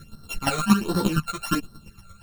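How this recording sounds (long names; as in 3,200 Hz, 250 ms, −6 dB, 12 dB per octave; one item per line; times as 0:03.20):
a buzz of ramps at a fixed pitch in blocks of 32 samples
phaser sweep stages 12, 1.3 Hz, lowest notch 280–2,500 Hz
chopped level 8.6 Hz, depth 65%, duty 20%
a shimmering, thickened sound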